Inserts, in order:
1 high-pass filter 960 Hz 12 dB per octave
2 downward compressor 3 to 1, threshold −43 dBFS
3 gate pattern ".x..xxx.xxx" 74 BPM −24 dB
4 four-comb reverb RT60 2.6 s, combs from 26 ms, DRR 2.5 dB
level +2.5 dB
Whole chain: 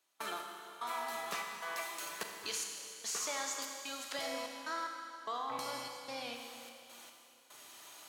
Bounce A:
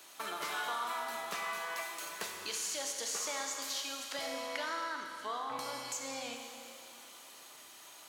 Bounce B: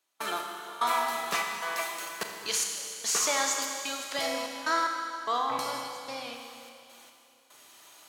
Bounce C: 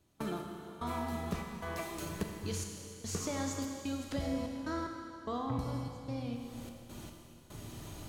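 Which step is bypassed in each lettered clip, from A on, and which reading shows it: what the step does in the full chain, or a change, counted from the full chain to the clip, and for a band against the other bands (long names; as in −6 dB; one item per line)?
3, change in crest factor −2.0 dB
2, average gain reduction 6.0 dB
1, 125 Hz band +29.5 dB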